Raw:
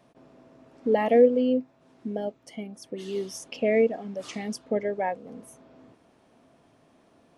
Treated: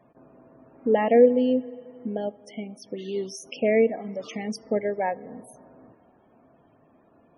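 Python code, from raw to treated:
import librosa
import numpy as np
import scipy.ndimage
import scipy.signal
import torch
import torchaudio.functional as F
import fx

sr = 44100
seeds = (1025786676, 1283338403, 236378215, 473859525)

y = fx.rev_plate(x, sr, seeds[0], rt60_s=2.6, hf_ratio=0.9, predelay_ms=0, drr_db=19.5)
y = fx.spec_topn(y, sr, count=64)
y = F.gain(torch.from_numpy(y), 1.5).numpy()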